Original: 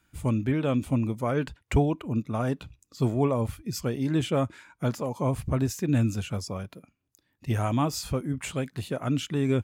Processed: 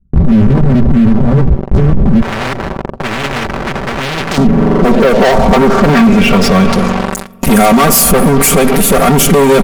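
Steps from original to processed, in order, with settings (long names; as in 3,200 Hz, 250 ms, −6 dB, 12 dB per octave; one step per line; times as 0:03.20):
lower of the sound and its delayed copy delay 4.3 ms
high-shelf EQ 5,300 Hz +6.5 dB
tape delay 67 ms, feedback 48%, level −15 dB, low-pass 1,600 Hz
spring reverb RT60 3 s, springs 43 ms, chirp 35 ms, DRR 14.5 dB
low-pass filter sweep 110 Hz → 12,000 Hz, 0:03.97–0:07.34
parametric band 3,800 Hz −8.5 dB 1.5 octaves
notch filter 970 Hz, Q 14
leveller curve on the samples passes 5
comb filter 5.2 ms, depth 51%
boost into a limiter +33 dB
0:02.22–0:04.38: every bin compressed towards the loudest bin 4 to 1
level −1 dB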